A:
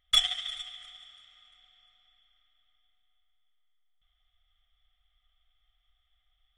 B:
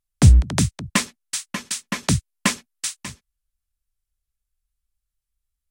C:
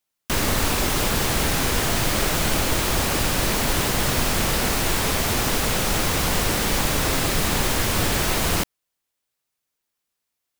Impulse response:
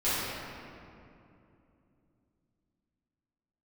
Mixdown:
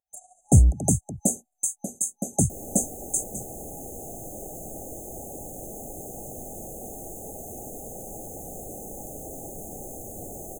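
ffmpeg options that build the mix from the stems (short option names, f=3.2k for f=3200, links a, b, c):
-filter_complex "[0:a]highpass=f=260:p=1,tremolo=f=13:d=0.41,volume=-3.5dB[a];[1:a]adelay=300,volume=2.5dB[b];[2:a]equalizer=f=380:w=0.51:g=3,adelay=2200,volume=-13.5dB[c];[a][b][c]amix=inputs=3:normalize=0,afftfilt=real='re*(1-between(b*sr/4096,830,6200))':imag='im*(1-between(b*sr/4096,830,6200))':win_size=4096:overlap=0.75,lowshelf=f=290:g=-7.5"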